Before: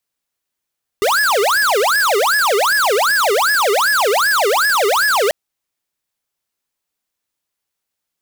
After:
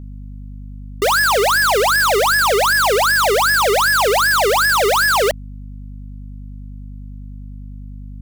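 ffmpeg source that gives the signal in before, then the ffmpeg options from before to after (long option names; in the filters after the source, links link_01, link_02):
-f lavfi -i "aevalsrc='0.188*(2*lt(mod((1052*t-658/(2*PI*2.6)*sin(2*PI*2.6*t)),1),0.5)-1)':duration=4.29:sample_rate=44100"
-af "aeval=exprs='val(0)+0.0282*(sin(2*PI*50*n/s)+sin(2*PI*2*50*n/s)/2+sin(2*PI*3*50*n/s)/3+sin(2*PI*4*50*n/s)/4+sin(2*PI*5*50*n/s)/5)':channel_layout=same"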